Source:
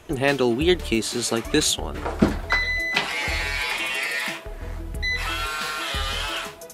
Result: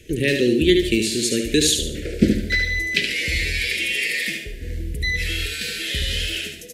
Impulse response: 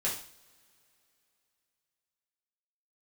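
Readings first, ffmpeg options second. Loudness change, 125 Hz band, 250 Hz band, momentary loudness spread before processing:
+2.5 dB, +4.0 dB, +4.0 dB, 8 LU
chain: -filter_complex "[0:a]asuperstop=centerf=960:order=8:qfactor=0.73,aecho=1:1:73|146|219|292:0.501|0.185|0.0686|0.0254,asplit=2[a][b];[1:a]atrim=start_sample=2205,adelay=56[c];[b][c]afir=irnorm=-1:irlink=0,volume=-20dB[d];[a][d]amix=inputs=2:normalize=0,volume=2.5dB"

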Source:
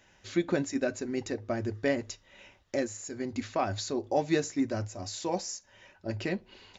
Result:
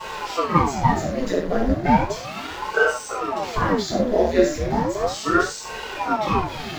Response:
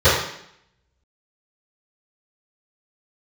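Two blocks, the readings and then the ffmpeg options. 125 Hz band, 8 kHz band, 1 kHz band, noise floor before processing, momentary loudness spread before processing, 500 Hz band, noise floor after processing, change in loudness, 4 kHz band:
+11.0 dB, n/a, +16.5 dB, -63 dBFS, 8 LU, +10.0 dB, -33 dBFS, +10.5 dB, +9.5 dB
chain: -filter_complex "[0:a]aeval=exprs='val(0)+0.5*0.0224*sgn(val(0))':c=same[a];[1:a]atrim=start_sample=2205,atrim=end_sample=6174[b];[a][b]afir=irnorm=-1:irlink=0,aeval=exprs='val(0)*sin(2*PI*540*n/s+540*0.85/0.35*sin(2*PI*0.35*n/s))':c=same,volume=-15.5dB"

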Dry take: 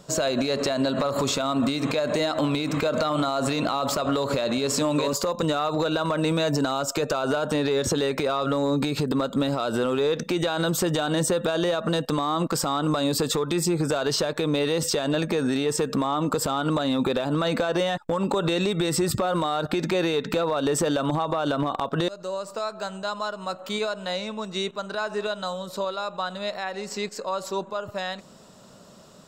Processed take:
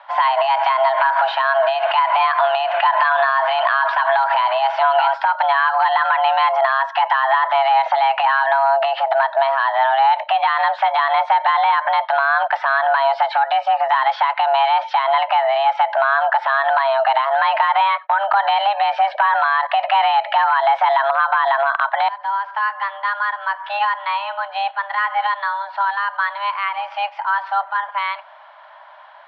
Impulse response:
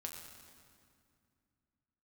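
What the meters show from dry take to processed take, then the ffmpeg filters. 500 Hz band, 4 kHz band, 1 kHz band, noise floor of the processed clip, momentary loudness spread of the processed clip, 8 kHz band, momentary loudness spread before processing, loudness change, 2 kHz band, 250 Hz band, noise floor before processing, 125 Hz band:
+3.0 dB, +2.0 dB, +16.5 dB, -40 dBFS, 6 LU, under -30 dB, 7 LU, +8.0 dB, +14.0 dB, under -40 dB, -47 dBFS, under -40 dB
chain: -filter_complex "[0:a]asplit=2[a][b];[1:a]atrim=start_sample=2205,atrim=end_sample=4410[c];[b][c]afir=irnorm=-1:irlink=0,volume=-12.5dB[d];[a][d]amix=inputs=2:normalize=0,highpass=f=250:t=q:w=0.5412,highpass=f=250:t=q:w=1.307,lowpass=f=2.8k:t=q:w=0.5176,lowpass=f=2.8k:t=q:w=0.7071,lowpass=f=2.8k:t=q:w=1.932,afreqshift=400,volume=8dB"

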